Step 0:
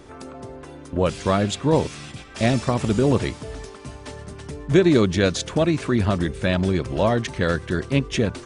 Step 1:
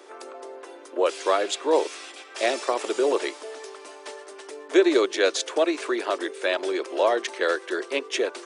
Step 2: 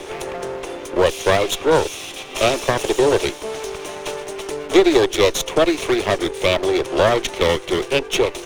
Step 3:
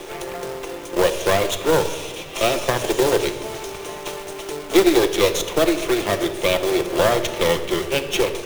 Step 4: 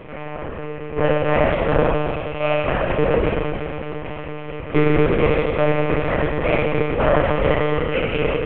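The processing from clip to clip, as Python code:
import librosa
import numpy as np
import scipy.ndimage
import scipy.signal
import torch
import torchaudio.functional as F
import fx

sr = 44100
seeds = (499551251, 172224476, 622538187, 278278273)

y1 = scipy.signal.sosfilt(scipy.signal.butter(8, 340.0, 'highpass', fs=sr, output='sos'), x)
y2 = fx.lower_of_two(y1, sr, delay_ms=0.31)
y2 = fx.band_squash(y2, sr, depth_pct=40)
y2 = y2 * 10.0 ** (7.5 / 20.0)
y3 = fx.quant_companded(y2, sr, bits=4)
y3 = fx.room_shoebox(y3, sr, seeds[0], volume_m3=2100.0, walls='mixed', distance_m=0.8)
y3 = y3 * 10.0 ** (-3.0 / 20.0)
y4 = scipy.signal.sosfilt(scipy.signal.butter(8, 2800.0, 'lowpass', fs=sr, output='sos'), y3)
y4 = fx.rev_schroeder(y4, sr, rt60_s=2.3, comb_ms=28, drr_db=-3.5)
y4 = fx.lpc_monotone(y4, sr, seeds[1], pitch_hz=150.0, order=10)
y4 = y4 * 10.0 ** (-3.0 / 20.0)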